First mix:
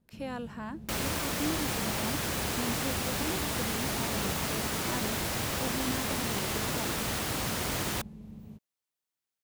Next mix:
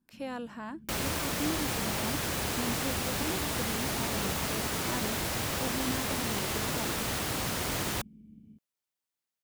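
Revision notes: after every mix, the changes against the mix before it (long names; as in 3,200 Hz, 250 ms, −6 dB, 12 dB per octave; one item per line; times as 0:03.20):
first sound: add formant resonators in series i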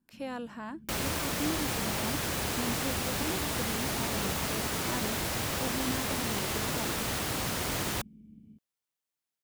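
nothing changed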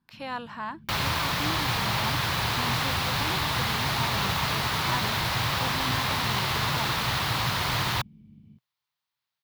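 master: add octave-band graphic EQ 125/250/500/1,000/2,000/4,000/8,000 Hz +11/−5/−3/+10/+4/+10/−7 dB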